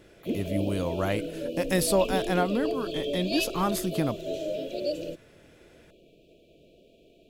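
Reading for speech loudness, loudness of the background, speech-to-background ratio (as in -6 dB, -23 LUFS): -29.0 LUFS, -33.0 LUFS, 4.0 dB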